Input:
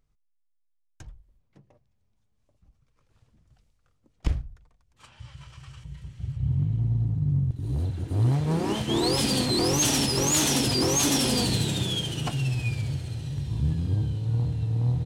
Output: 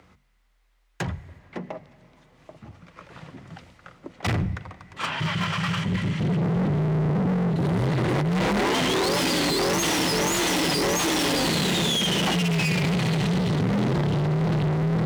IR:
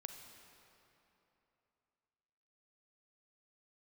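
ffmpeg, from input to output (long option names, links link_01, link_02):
-filter_complex "[0:a]bass=frequency=250:gain=5,treble=frequency=4000:gain=-5,bandreject=frequency=50:width_type=h:width=6,bandreject=frequency=100:width_type=h:width=6,bandreject=frequency=150:width_type=h:width=6,bandreject=frequency=200:width_type=h:width=6,asplit=2[link_01][link_02];[link_02]highpass=frequency=720:poles=1,volume=33dB,asoftclip=type=tanh:threshold=-13.5dB[link_03];[link_01][link_03]amix=inputs=2:normalize=0,lowpass=frequency=2100:poles=1,volume=-6dB,volume=26dB,asoftclip=hard,volume=-26dB,afreqshift=40,asplit=2[link_04][link_05];[link_05]equalizer=frequency=2000:width=5.6:gain=14.5[link_06];[1:a]atrim=start_sample=2205[link_07];[link_06][link_07]afir=irnorm=-1:irlink=0,volume=-9dB[link_08];[link_04][link_08]amix=inputs=2:normalize=0,volume=2.5dB"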